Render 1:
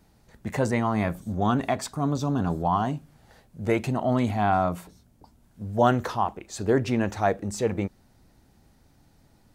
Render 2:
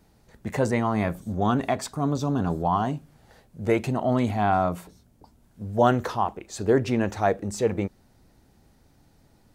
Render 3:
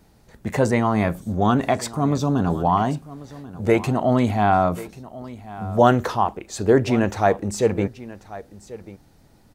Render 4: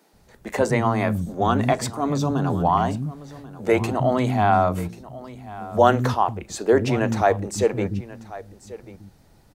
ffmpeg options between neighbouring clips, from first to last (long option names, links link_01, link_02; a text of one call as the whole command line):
ffmpeg -i in.wav -af "equalizer=frequency=440:width_type=o:width=0.77:gain=2.5" out.wav
ffmpeg -i in.wav -af "aecho=1:1:1089:0.133,volume=4.5dB" out.wav
ffmpeg -i in.wav -filter_complex "[0:a]acrossover=split=240[link_01][link_02];[link_01]adelay=130[link_03];[link_03][link_02]amix=inputs=2:normalize=0" out.wav